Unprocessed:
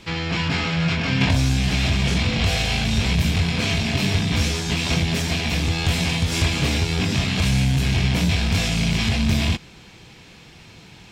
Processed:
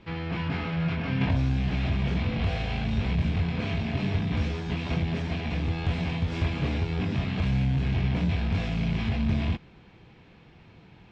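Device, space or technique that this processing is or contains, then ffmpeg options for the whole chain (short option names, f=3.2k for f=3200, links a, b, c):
phone in a pocket: -af "lowpass=3.4k,highshelf=f=2.1k:g=-9.5,volume=-5.5dB"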